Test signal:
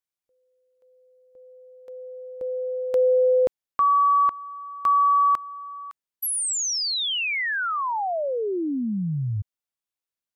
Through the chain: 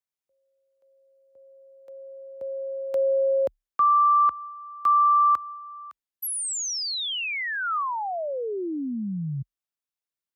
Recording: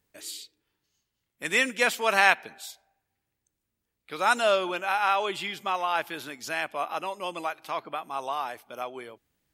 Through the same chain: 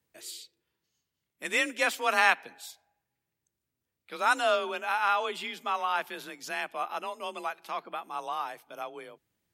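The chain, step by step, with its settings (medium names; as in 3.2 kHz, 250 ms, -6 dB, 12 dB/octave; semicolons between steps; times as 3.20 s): dynamic bell 1.2 kHz, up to +4 dB, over -33 dBFS, Q 3.5; frequency shift +33 Hz; trim -3.5 dB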